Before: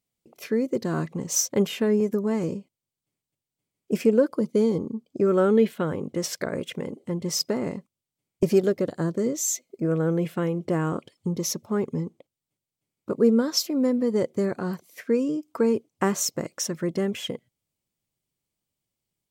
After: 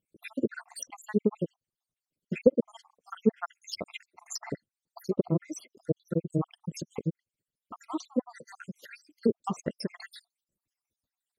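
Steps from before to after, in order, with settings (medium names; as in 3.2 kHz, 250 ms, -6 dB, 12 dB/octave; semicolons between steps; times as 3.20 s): random holes in the spectrogram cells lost 78%; low-pass that closes with the level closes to 790 Hz, closed at -23.5 dBFS; granular stretch 0.59×, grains 65 ms; trim +2.5 dB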